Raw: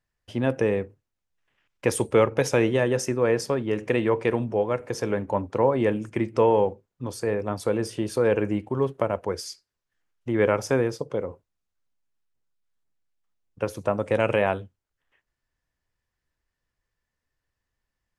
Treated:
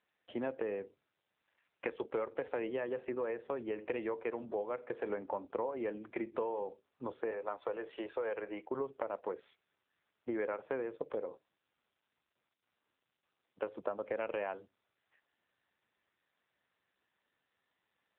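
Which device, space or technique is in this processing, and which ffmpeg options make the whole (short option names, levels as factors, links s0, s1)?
voicemail: -filter_complex "[0:a]asettb=1/sr,asplit=3[s0][s1][s2];[s0]atrim=end=7.314[s3];[s1]atrim=start=7.31:end=8.71,asetpts=PTS-STARTPTS,afade=t=in:d=0.004:c=qsin,afade=t=out:st=1.396:d=0.004:c=qsin,acrossover=split=420 5300:gain=0.141 1 0.158[s4][s5][s6];[s4][s5][s6]amix=inputs=3:normalize=0[s7];[s2]atrim=start=8.706[s8];[s3][s7]acrossfade=d=0.004:c1=hsin:c2=qsin[s9];[s9][s8]acrossfade=d=0.004:c1=qsin:c2=hsin,highpass=340,lowpass=2600,acompressor=threshold=0.0251:ratio=6,volume=0.841" -ar 8000 -c:a libopencore_amrnb -b:a 7400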